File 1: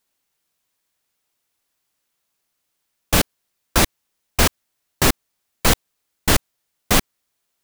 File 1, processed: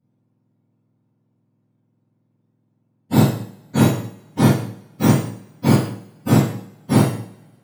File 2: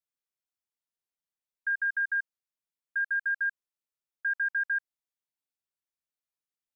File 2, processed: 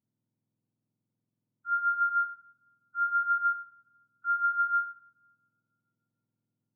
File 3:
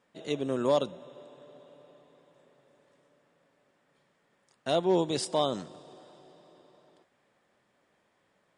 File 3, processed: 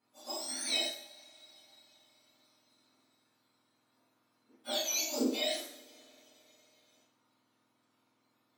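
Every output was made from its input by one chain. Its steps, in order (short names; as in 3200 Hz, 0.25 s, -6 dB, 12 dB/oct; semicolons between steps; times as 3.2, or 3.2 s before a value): spectrum mirrored in octaves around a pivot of 1500 Hz; two-slope reverb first 0.56 s, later 1.9 s, from -26 dB, DRR -7.5 dB; gain -10 dB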